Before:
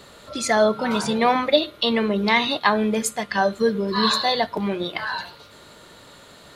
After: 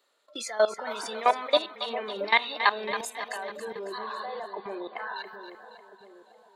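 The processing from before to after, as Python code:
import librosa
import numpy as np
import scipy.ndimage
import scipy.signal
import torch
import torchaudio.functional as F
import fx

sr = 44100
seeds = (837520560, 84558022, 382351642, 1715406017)

p1 = scipy.signal.sosfilt(scipy.signal.bessel(8, 470.0, 'highpass', norm='mag', fs=sr, output='sos'), x)
p2 = fx.noise_reduce_blind(p1, sr, reduce_db=16)
p3 = fx.lowpass(p2, sr, hz=1400.0, slope=12, at=(3.98, 5.16))
p4 = fx.level_steps(p3, sr, step_db=18)
y = p4 + fx.echo_split(p4, sr, split_hz=750.0, low_ms=675, high_ms=275, feedback_pct=52, wet_db=-10, dry=0)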